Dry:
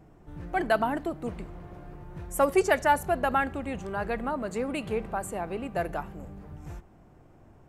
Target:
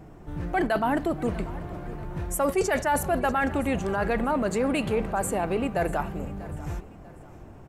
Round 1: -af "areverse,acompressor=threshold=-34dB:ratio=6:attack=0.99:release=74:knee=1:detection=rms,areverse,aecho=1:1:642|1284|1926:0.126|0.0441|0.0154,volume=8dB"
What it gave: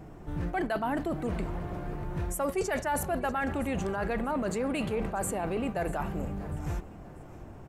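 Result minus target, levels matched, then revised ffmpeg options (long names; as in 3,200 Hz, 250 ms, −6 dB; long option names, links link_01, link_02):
downward compressor: peak gain reduction +6 dB
-af "areverse,acompressor=threshold=-27dB:ratio=6:attack=0.99:release=74:knee=1:detection=rms,areverse,aecho=1:1:642|1284|1926:0.126|0.0441|0.0154,volume=8dB"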